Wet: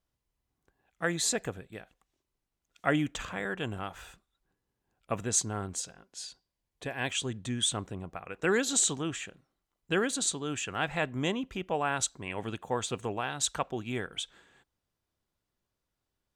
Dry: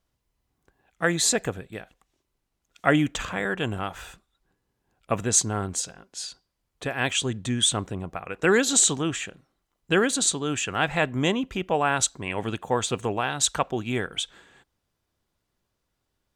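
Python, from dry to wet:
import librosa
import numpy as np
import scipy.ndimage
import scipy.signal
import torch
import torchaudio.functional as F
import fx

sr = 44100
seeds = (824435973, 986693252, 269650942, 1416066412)

y = fx.notch(x, sr, hz=1300.0, q=5.9, at=(6.19, 7.07))
y = y * librosa.db_to_amplitude(-7.0)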